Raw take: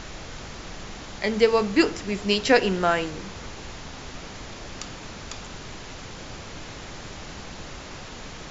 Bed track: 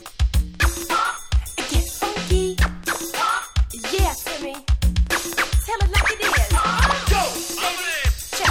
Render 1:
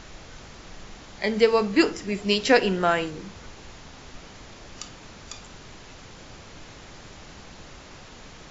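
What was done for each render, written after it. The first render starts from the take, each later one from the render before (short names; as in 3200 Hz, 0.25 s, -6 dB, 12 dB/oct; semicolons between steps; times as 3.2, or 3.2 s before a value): noise print and reduce 6 dB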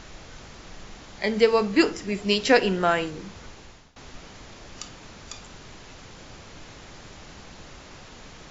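3.36–3.96 fade out equal-power, to -22.5 dB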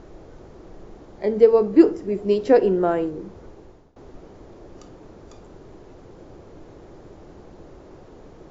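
EQ curve 240 Hz 0 dB, 350 Hz +9 dB, 2600 Hz -16 dB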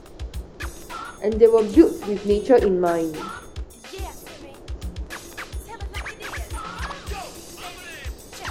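add bed track -14 dB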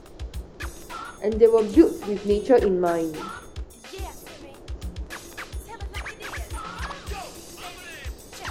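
gain -2 dB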